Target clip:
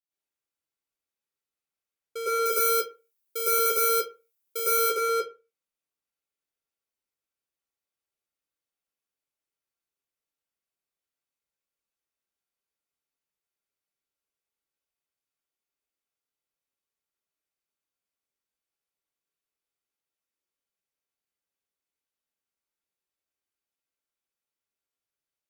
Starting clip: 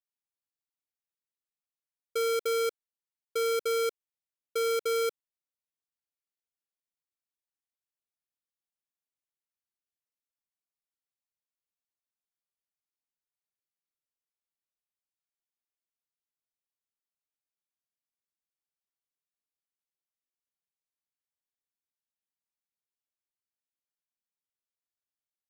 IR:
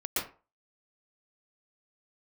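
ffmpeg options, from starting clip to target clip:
-filter_complex "[0:a]asettb=1/sr,asplit=3[a][b][c];[a]atrim=end=2.434[d];[b]atrim=start=2.43:end=4.86,asetpts=PTS-STARTPTS,afade=t=in:d=0.004:c=qsin,afade=t=out:st=2.426:d=0.004:c=qsin,aemphasis=mode=production:type=50fm[e];[c]atrim=start=4.856[f];[d][e]acrossfade=d=0.004:c1=hsin:c2=qsin[g];[g][f]acrossfade=d=0.004:c1=qsin:c2=hsin[h];[1:a]atrim=start_sample=2205,asetrate=48510,aresample=44100[i];[h][i]afir=irnorm=-1:irlink=0,volume=-1.5dB"

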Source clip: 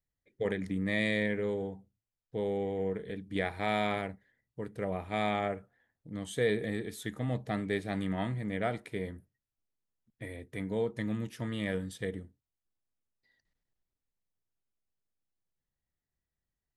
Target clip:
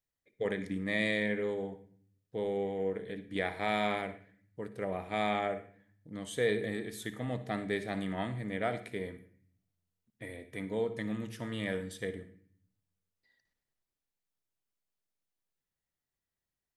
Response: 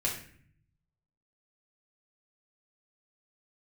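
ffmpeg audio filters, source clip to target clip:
-filter_complex "[0:a]lowshelf=f=150:g=-9,asplit=2[a][b];[1:a]atrim=start_sample=2205,adelay=56[c];[b][c]afir=irnorm=-1:irlink=0,volume=-18dB[d];[a][d]amix=inputs=2:normalize=0"

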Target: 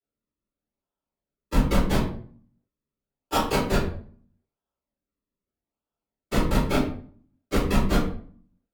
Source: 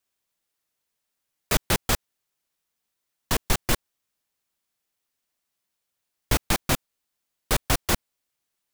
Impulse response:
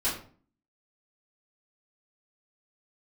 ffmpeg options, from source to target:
-filter_complex "[0:a]agate=range=-21dB:threshold=-24dB:ratio=16:detection=peak,highpass=f=1.3k:t=q:w=4.5,acrusher=samples=40:mix=1:aa=0.000001:lfo=1:lforange=40:lforate=0.81,afreqshift=16,asoftclip=type=tanh:threshold=-25.5dB[a];[1:a]atrim=start_sample=2205,asetrate=37926,aresample=44100[b];[a][b]afir=irnorm=-1:irlink=0,volume=-1dB"

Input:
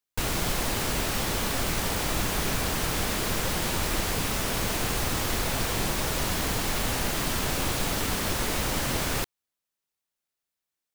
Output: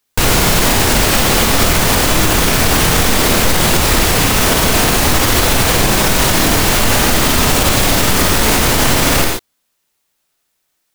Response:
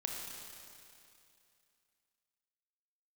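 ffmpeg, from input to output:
-filter_complex "[1:a]atrim=start_sample=2205,atrim=end_sample=6615[a];[0:a][a]afir=irnorm=-1:irlink=0,alimiter=level_in=20dB:limit=-1dB:release=50:level=0:latency=1,volume=-1dB"

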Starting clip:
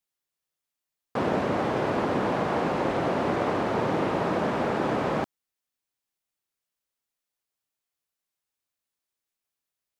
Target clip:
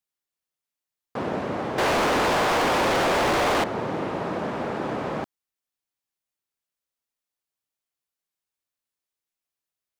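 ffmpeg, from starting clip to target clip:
-filter_complex "[0:a]asettb=1/sr,asplit=3[a][b][c];[a]atrim=end=1.784[d];[b]atrim=start=1.78:end=3.64,asetpts=PTS-STARTPTS,afade=t=in:d=0.004:c=qsin,afade=t=out:st=1.856:d=0.004:c=qsin,asplit=2[e][f];[f]highpass=f=720:p=1,volume=40dB,asoftclip=type=tanh:threshold=-13.5dB[g];[e][g]amix=inputs=2:normalize=0,lowpass=f=4.5k:p=1,volume=-6dB[h];[c]atrim=start=3.636[i];[d][h]acrossfade=d=0.004:c1=hsin:c2=qsin[j];[j][i]acrossfade=d=0.004:c1=qsin:c2=hsin,volume=-2.5dB"

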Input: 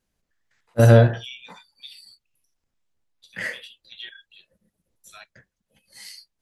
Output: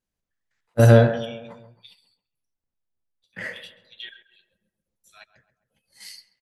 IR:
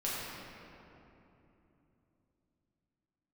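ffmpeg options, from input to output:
-filter_complex "[0:a]agate=range=-9dB:threshold=-43dB:ratio=16:detection=peak,asettb=1/sr,asplit=3[a][b][c];[a]atrim=end=1.254[d];[b]atrim=start=1.25:end=3.56,asetpts=PTS-STARTPTS,afade=t=in:d=0.004:c=qsin,afade=t=out:st=2.306:d=0.004:c=qsin,highshelf=f=2.4k:g=-10[e];[c]atrim=start=3.556[f];[d][e]acrossfade=d=0.004:c1=hsin:c2=qsin[g];[g][f]acrossfade=d=0.004:c1=qsin:c2=hsin,asplit=2[h][i];[i]adelay=134,lowpass=f=1.5k:p=1,volume=-12dB,asplit=2[j][k];[k]adelay=134,lowpass=f=1.5k:p=1,volume=0.52,asplit=2[l][m];[m]adelay=134,lowpass=f=1.5k:p=1,volume=0.52,asplit=2[n][o];[o]adelay=134,lowpass=f=1.5k:p=1,volume=0.52,asplit=2[p][q];[q]adelay=134,lowpass=f=1.5k:p=1,volume=0.52[r];[h][j][l][n][p][r]amix=inputs=6:normalize=0"

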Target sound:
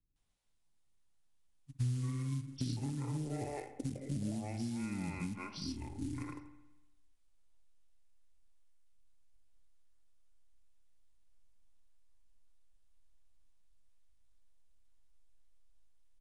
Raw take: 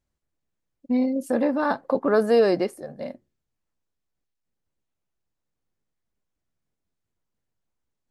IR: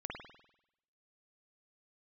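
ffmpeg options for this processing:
-filter_complex "[0:a]acrossover=split=760[a][b];[b]adelay=80[c];[a][c]amix=inputs=2:normalize=0,acrusher=bits=7:mode=log:mix=0:aa=0.000001,acompressor=threshold=-30dB:ratio=6,asubboost=boost=9:cutoff=77,asplit=2[d][e];[1:a]atrim=start_sample=2205,asetrate=74970,aresample=44100[f];[e][f]afir=irnorm=-1:irlink=0,volume=-3dB[g];[d][g]amix=inputs=2:normalize=0,acrossover=split=310|3000[h][i][j];[i]acompressor=threshold=-37dB:ratio=6[k];[h][k][j]amix=inputs=3:normalize=0,asetrate=22050,aresample=44100,highshelf=f=5.1k:g=9,volume=-3dB"

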